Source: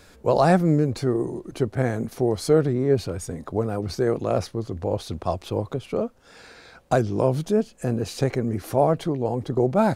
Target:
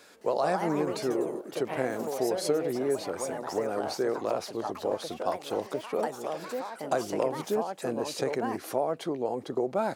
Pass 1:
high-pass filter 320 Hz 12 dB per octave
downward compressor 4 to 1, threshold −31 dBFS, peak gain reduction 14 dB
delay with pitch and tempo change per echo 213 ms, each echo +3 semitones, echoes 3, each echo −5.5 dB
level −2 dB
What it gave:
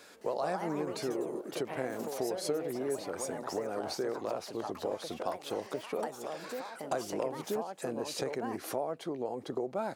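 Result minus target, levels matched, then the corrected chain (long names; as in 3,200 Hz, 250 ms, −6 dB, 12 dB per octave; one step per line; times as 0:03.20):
downward compressor: peak gain reduction +6.5 dB
high-pass filter 320 Hz 12 dB per octave
downward compressor 4 to 1, threshold −22.5 dBFS, peak gain reduction 7.5 dB
delay with pitch and tempo change per echo 213 ms, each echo +3 semitones, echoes 3, each echo −5.5 dB
level −2 dB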